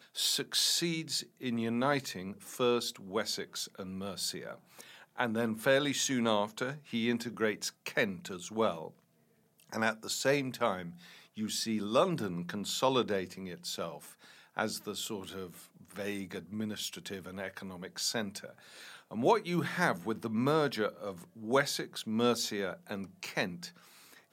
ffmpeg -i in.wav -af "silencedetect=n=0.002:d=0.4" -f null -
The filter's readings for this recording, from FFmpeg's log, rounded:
silence_start: 8.99
silence_end: 9.59 | silence_duration: 0.60